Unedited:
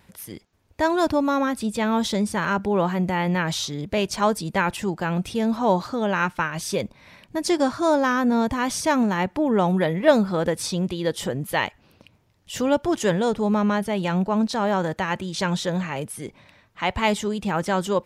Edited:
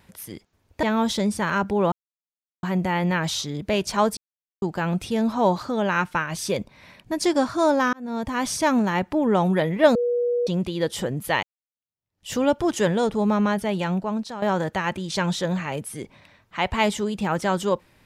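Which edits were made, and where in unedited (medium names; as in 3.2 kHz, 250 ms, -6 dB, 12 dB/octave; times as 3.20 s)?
0.83–1.78 s: delete
2.87 s: insert silence 0.71 s
4.41–4.86 s: mute
8.17–8.69 s: fade in
10.19–10.71 s: bleep 483 Hz -19.5 dBFS
11.67–12.53 s: fade in exponential
13.96–14.66 s: fade out, to -12 dB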